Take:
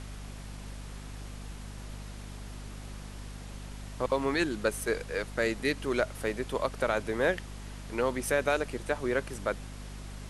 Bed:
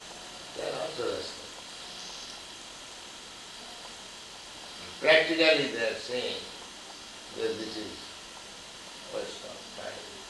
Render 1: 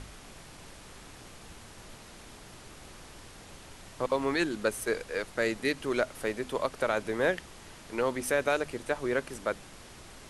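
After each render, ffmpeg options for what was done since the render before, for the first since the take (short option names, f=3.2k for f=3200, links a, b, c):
-af "bandreject=f=50:t=h:w=4,bandreject=f=100:t=h:w=4,bandreject=f=150:t=h:w=4,bandreject=f=200:t=h:w=4,bandreject=f=250:t=h:w=4"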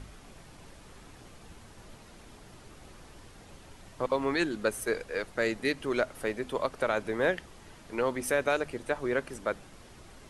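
-af "afftdn=nr=6:nf=-50"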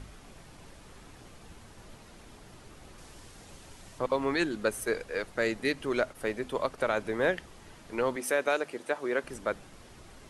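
-filter_complex "[0:a]asettb=1/sr,asplit=3[a][b][c];[a]atrim=end=2.984[d];[b]atrim=start=2.98:end=3.99,asetpts=PTS-STARTPTS,afade=t=in:d=0.004:c=qsin,afade=t=out:st=1.006:d=0.004:c=qsin,equalizer=f=8k:w=0.52:g=5.5[e];[c]atrim=start=3.986[f];[d][e]acrossfade=d=0.004:c1=hsin:c2=qsin[g];[g][f]acrossfade=d=0.004:c1=qsin:c2=hsin,asettb=1/sr,asplit=3[h][i][j];[h]atrim=end=6.004[k];[i]atrim=start=6:end=6.78,asetpts=PTS-STARTPTS,afade=t=in:d=0.004:c=qsin,afade=t=out:st=0.776:d=0.004:c=qsin,agate=range=-33dB:threshold=-44dB:ratio=3:release=100:detection=peak[l];[j]atrim=start=6.776[m];[k][l]acrossfade=d=0.004:c1=hsin:c2=qsin[n];[n][m]acrossfade=d=0.004:c1=qsin:c2=hsin,asettb=1/sr,asplit=3[o][p][q];[o]atrim=end=8.164[r];[p]atrim=start=8.16:end=9.24,asetpts=PTS-STARTPTS,afade=t=in:d=0.004:c=qsin,afade=t=out:st=1.076:d=0.004:c=qsin,highpass=260[s];[q]atrim=start=9.236[t];[r][s]acrossfade=d=0.004:c1=hsin:c2=qsin[u];[u][t]acrossfade=d=0.004:c1=qsin:c2=hsin"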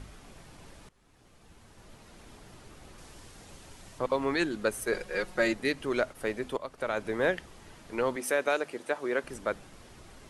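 -filter_complex "[0:a]asettb=1/sr,asplit=3[a][b][c];[a]atrim=end=4.924[d];[b]atrim=start=4.92:end=5.53,asetpts=PTS-STARTPTS,afade=t=in:d=0.004:c=qsin,afade=t=out:st=0.606:d=0.004:c=qsin,aecho=1:1:5.5:0.87,atrim=end_sample=26901[e];[c]atrim=start=5.526[f];[d][e]acrossfade=d=0.004:c1=hsin:c2=qsin[g];[g][f]acrossfade=d=0.004:c1=qsin:c2=hsin,asplit=3[h][i][j];[h]atrim=end=0.89,asetpts=PTS-STARTPTS,afade=t=out:st=0.886:d=0.004:c=hsin:silence=0.1[k];[i]atrim=start=0.89:end=6.57,asetpts=PTS-STARTPTS,afade=t=in:d=1.4:silence=0.1,afade=t=out:st=5.676:d=0.004:c=hsin:silence=0.237137[l];[j]atrim=start=6.57,asetpts=PTS-STARTPTS,afade=t=in:d=0.53:silence=0.237137[m];[k][l][m]concat=n=3:v=0:a=1"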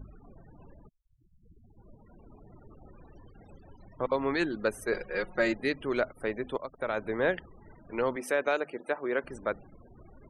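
-af "afftfilt=real='re*gte(hypot(re,im),0.00501)':imag='im*gte(hypot(re,im),0.00501)':win_size=1024:overlap=0.75,highshelf=f=6.3k:g=-10.5"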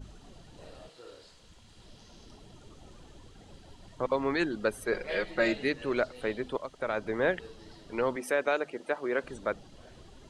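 -filter_complex "[1:a]volume=-17.5dB[a];[0:a][a]amix=inputs=2:normalize=0"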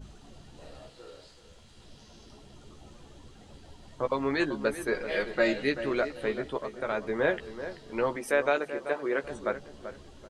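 -filter_complex "[0:a]asplit=2[a][b];[b]adelay=14,volume=-7dB[c];[a][c]amix=inputs=2:normalize=0,asplit=2[d][e];[e]adelay=385,lowpass=f=2k:p=1,volume=-11dB,asplit=2[f][g];[g]adelay=385,lowpass=f=2k:p=1,volume=0.29,asplit=2[h][i];[i]adelay=385,lowpass=f=2k:p=1,volume=0.29[j];[d][f][h][j]amix=inputs=4:normalize=0"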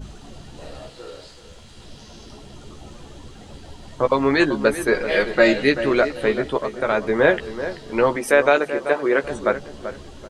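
-af "volume=10.5dB,alimiter=limit=-2dB:level=0:latency=1"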